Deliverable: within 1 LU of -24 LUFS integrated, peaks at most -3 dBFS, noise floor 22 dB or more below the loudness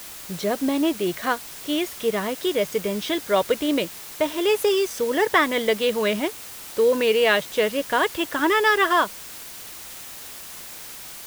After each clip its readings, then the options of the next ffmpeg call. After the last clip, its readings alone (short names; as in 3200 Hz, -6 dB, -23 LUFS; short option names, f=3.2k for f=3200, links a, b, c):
noise floor -39 dBFS; noise floor target -45 dBFS; loudness -22.5 LUFS; peak -4.5 dBFS; loudness target -24.0 LUFS
-> -af "afftdn=nr=6:nf=-39"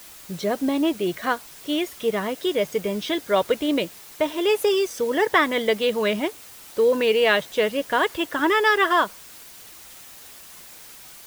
noise floor -44 dBFS; noise floor target -45 dBFS
-> -af "afftdn=nr=6:nf=-44"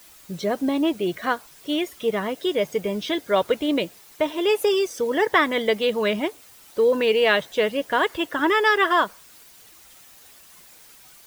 noise floor -50 dBFS; loudness -22.5 LUFS; peak -5.0 dBFS; loudness target -24.0 LUFS
-> -af "volume=-1.5dB"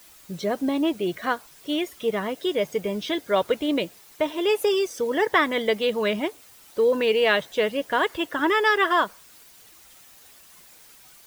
loudness -24.0 LUFS; peak -6.5 dBFS; noise floor -51 dBFS